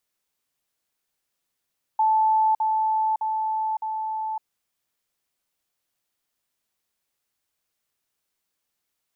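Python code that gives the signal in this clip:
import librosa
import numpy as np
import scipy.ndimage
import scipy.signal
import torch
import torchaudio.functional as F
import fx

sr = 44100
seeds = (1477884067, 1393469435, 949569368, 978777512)

y = fx.level_ladder(sr, hz=874.0, from_db=-16.5, step_db=-3.0, steps=4, dwell_s=0.56, gap_s=0.05)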